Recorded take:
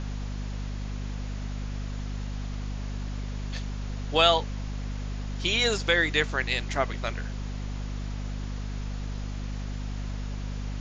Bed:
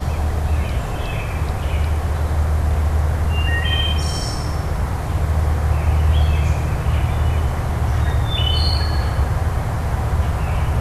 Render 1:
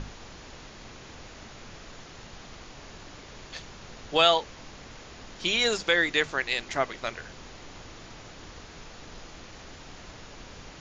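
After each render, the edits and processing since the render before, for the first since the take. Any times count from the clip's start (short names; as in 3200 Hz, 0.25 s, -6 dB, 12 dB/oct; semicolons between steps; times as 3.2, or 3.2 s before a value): notches 50/100/150/200/250 Hz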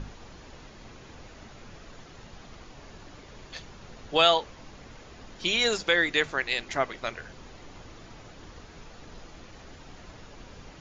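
denoiser 6 dB, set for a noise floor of -47 dBFS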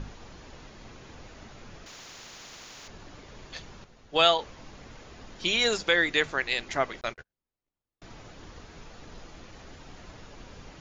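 1.86–2.88 spectral compressor 10:1; 3.84–4.39 upward expander, over -37 dBFS; 7.01–8.02 gate -39 dBFS, range -47 dB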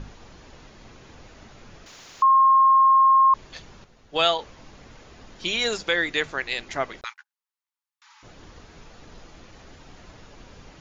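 2.22–3.34 bleep 1070 Hz -12.5 dBFS; 7.04–8.23 Chebyshev high-pass 830 Hz, order 10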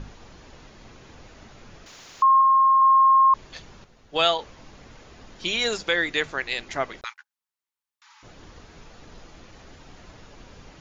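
2.41–2.82 HPF 630 Hz 6 dB/oct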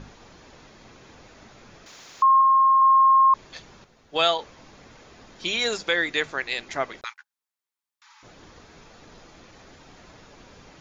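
low shelf 90 Hz -9.5 dB; notch 2900 Hz, Q 23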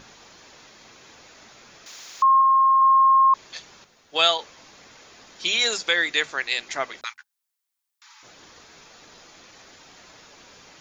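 tilt +2.5 dB/oct; notches 50/100/150/200/250 Hz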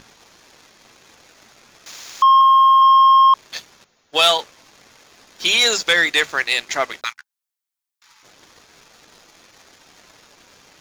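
sample leveller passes 2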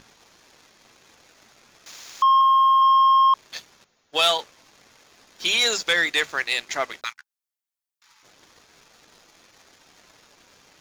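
gain -5 dB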